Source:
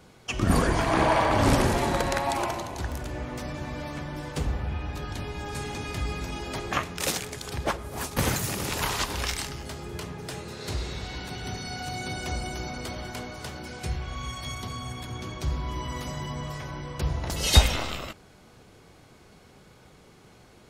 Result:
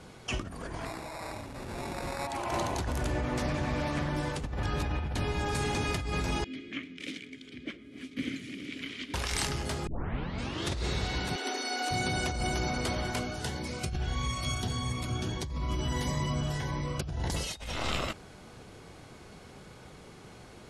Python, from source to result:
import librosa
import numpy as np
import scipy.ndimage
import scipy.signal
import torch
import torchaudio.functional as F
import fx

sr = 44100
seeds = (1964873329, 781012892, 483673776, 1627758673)

y = fx.sample_hold(x, sr, seeds[0], rate_hz=3100.0, jitter_pct=0, at=(0.85, 2.27))
y = fx.doppler_dist(y, sr, depth_ms=0.19, at=(3.34, 4.1))
y = fx.vowel_filter(y, sr, vowel='i', at=(6.44, 9.14))
y = fx.brickwall_highpass(y, sr, low_hz=240.0, at=(11.36, 11.91))
y = fx.notch_cascade(y, sr, direction='rising', hz=1.6, at=(13.18, 17.33), fade=0.02)
y = fx.edit(y, sr, fx.reverse_span(start_s=4.63, length_s=0.52),
    fx.tape_start(start_s=9.87, length_s=0.94), tone=tone)
y = scipy.signal.sosfilt(scipy.signal.cheby1(3, 1.0, 11000.0, 'lowpass', fs=sr, output='sos'), y)
y = fx.over_compress(y, sr, threshold_db=-33.0, ratio=-1.0)